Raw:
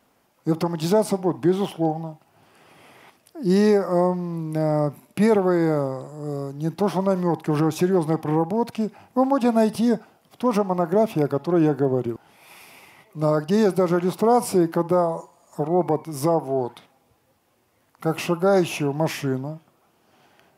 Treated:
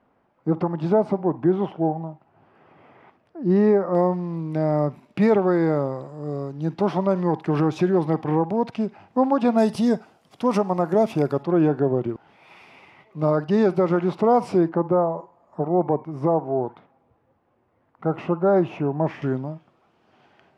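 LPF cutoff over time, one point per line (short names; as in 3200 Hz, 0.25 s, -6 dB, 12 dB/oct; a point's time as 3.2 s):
1600 Hz
from 3.95 s 3700 Hz
from 9.58 s 8200 Hz
from 11.43 s 3100 Hz
from 14.69 s 1400 Hz
from 19.22 s 3500 Hz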